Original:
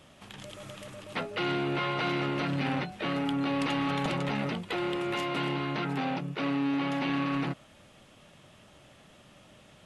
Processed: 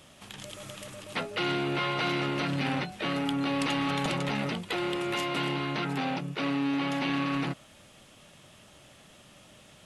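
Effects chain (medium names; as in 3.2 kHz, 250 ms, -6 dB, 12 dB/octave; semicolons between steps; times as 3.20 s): treble shelf 3.9 kHz +8 dB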